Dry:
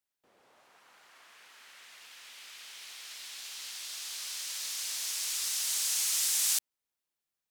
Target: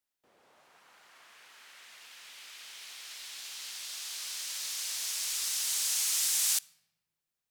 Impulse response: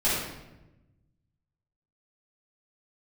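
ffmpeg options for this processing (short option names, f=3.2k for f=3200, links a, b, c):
-filter_complex "[0:a]asplit=2[a][b];[b]lowshelf=f=230:t=q:w=3:g=9[c];[1:a]atrim=start_sample=2205[d];[c][d]afir=irnorm=-1:irlink=0,volume=-34dB[e];[a][e]amix=inputs=2:normalize=0"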